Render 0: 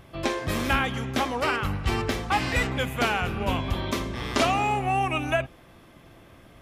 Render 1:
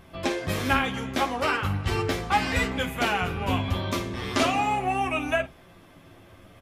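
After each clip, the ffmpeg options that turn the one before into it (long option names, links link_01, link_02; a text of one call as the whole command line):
ffmpeg -i in.wav -af "aecho=1:1:11|52:0.562|0.178,flanger=delay=4.3:depth=5.1:regen=-64:speed=0.38:shape=sinusoidal,volume=3dB" out.wav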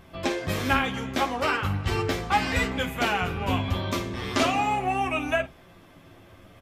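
ffmpeg -i in.wav -af "equalizer=frequency=10000:width=7.8:gain=-7" out.wav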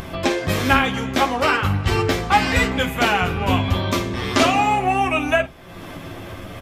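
ffmpeg -i in.wav -af "acompressor=mode=upward:threshold=-30dB:ratio=2.5,volume=7dB" out.wav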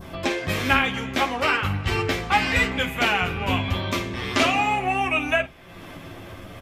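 ffmpeg -i in.wav -af "adynamicequalizer=threshold=0.02:dfrequency=2400:dqfactor=1.3:tfrequency=2400:tqfactor=1.3:attack=5:release=100:ratio=0.375:range=3:mode=boostabove:tftype=bell,volume=-5.5dB" out.wav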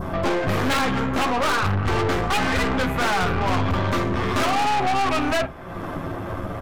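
ffmpeg -i in.wav -af "highshelf=frequency=1800:width_type=q:width=1.5:gain=-10.5,aeval=exprs='0.422*sin(PI/2*3.16*val(0)/0.422)':channel_layout=same,aeval=exprs='(tanh(7.94*val(0)+0.5)-tanh(0.5))/7.94':channel_layout=same,volume=-1.5dB" out.wav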